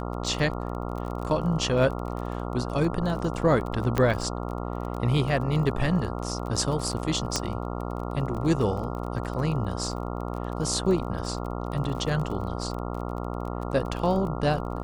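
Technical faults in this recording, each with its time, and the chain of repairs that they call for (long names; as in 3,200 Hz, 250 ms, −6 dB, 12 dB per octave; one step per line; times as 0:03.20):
mains buzz 60 Hz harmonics 23 −32 dBFS
surface crackle 30 per second −33 dBFS
0:03.98: click −11 dBFS
0:07.36: click −10 dBFS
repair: click removal
hum removal 60 Hz, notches 23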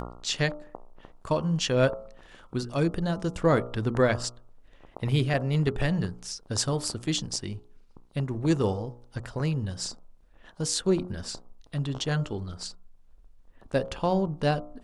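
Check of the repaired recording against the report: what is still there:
none of them is left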